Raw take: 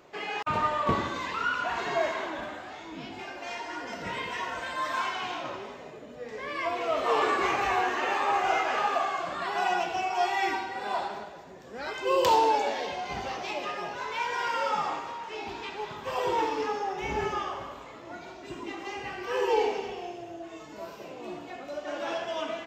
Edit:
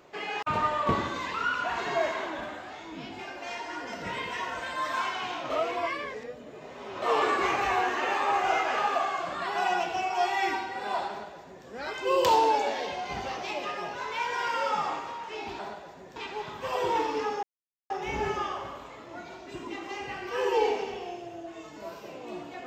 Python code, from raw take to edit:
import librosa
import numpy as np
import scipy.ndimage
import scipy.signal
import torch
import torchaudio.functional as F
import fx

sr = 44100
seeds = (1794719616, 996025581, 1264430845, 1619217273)

y = fx.edit(x, sr, fx.reverse_span(start_s=5.5, length_s=1.52),
    fx.duplicate(start_s=11.09, length_s=0.57, to_s=15.59),
    fx.insert_silence(at_s=16.86, length_s=0.47), tone=tone)